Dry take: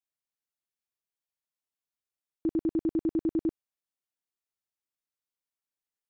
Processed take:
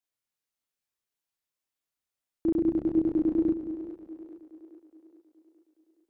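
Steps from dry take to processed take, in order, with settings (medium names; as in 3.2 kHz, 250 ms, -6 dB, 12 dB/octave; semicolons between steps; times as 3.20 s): chorus voices 2, 1 Hz, delay 29 ms, depth 4.3 ms; two-band feedback delay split 330 Hz, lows 180 ms, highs 419 ms, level -10.5 dB; trim +6 dB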